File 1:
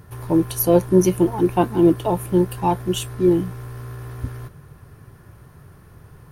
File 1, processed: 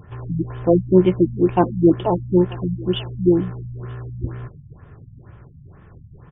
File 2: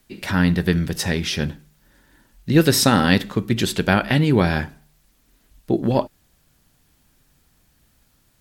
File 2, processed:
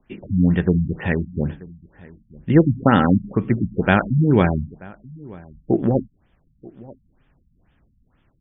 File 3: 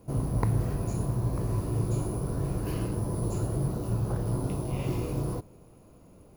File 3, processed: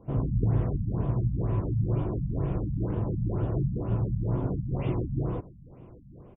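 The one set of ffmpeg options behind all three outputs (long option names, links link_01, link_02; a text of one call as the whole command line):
ffmpeg -i in.wav -filter_complex "[0:a]asplit=2[link_01][link_02];[link_02]adelay=932.9,volume=-22dB,highshelf=frequency=4000:gain=-21[link_03];[link_01][link_03]amix=inputs=2:normalize=0,afftfilt=real='re*lt(b*sr/1024,230*pow(3700/230,0.5+0.5*sin(2*PI*2.1*pts/sr)))':imag='im*lt(b*sr/1024,230*pow(3700/230,0.5+0.5*sin(2*PI*2.1*pts/sr)))':win_size=1024:overlap=0.75,volume=1.5dB" out.wav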